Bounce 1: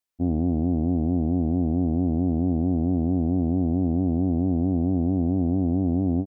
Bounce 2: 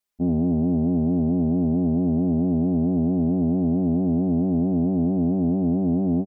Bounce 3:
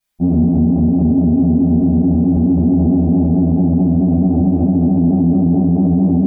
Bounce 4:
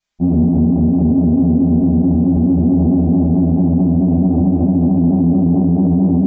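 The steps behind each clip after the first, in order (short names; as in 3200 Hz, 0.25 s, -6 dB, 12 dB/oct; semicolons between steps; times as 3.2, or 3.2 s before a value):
comb 4.9 ms, depth 99%
reverb RT60 0.60 s, pre-delay 3 ms, DRR -9 dB; limiter -6.5 dBFS, peak gain reduction 9 dB
downsampling 16000 Hz; Doppler distortion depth 0.11 ms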